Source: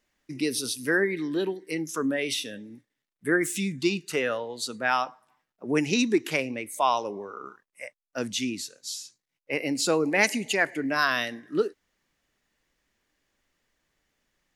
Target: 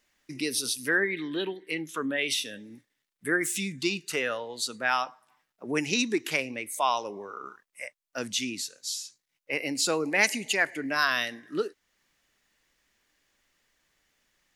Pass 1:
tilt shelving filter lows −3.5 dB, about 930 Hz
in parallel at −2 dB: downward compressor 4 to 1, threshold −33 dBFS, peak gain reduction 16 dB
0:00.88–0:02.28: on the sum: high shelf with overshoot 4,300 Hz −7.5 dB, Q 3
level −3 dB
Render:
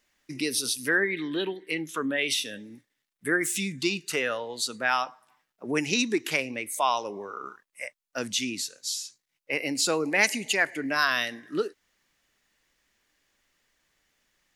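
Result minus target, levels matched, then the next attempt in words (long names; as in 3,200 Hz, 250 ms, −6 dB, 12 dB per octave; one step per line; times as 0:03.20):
downward compressor: peak gain reduction −8.5 dB
tilt shelving filter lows −3.5 dB, about 930 Hz
in parallel at −2 dB: downward compressor 4 to 1, threshold −44 dBFS, peak gain reduction 24 dB
0:00.88–0:02.28: on the sum: high shelf with overshoot 4,300 Hz −7.5 dB, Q 3
level −3 dB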